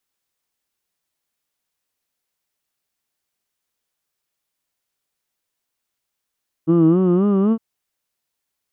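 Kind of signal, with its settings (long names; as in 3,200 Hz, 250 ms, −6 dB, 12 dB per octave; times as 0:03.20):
vowel from formants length 0.91 s, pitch 158 Hz, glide +5.5 semitones, vibrato 3.8 Hz, vibrato depth 1 semitone, F1 310 Hz, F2 1,200 Hz, F3 2,900 Hz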